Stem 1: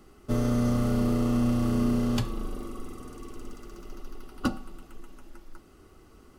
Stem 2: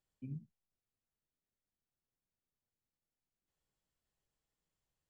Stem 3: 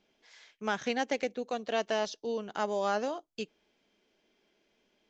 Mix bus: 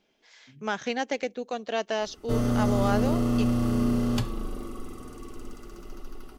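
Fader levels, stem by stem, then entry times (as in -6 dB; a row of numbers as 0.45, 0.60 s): +0.5, -9.5, +2.0 dB; 2.00, 0.25, 0.00 s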